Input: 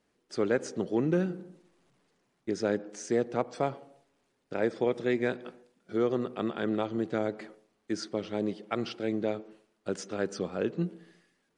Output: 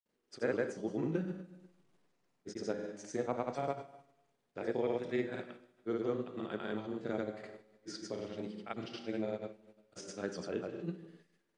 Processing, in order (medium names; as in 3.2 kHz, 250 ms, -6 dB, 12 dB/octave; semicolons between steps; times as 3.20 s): Schroeder reverb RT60 0.87 s, combs from 33 ms, DRR 7 dB; granulator, pitch spread up and down by 0 st; trim -6.5 dB